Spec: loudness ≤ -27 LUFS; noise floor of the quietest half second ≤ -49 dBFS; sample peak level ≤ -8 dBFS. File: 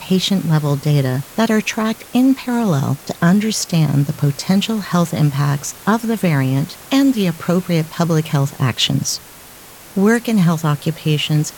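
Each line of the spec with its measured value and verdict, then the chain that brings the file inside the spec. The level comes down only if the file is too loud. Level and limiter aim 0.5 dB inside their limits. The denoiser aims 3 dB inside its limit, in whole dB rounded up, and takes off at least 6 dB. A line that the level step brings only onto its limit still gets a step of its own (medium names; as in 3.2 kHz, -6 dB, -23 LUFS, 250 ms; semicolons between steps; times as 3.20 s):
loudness -17.0 LUFS: fail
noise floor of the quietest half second -39 dBFS: fail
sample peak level -2.5 dBFS: fail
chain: trim -10.5 dB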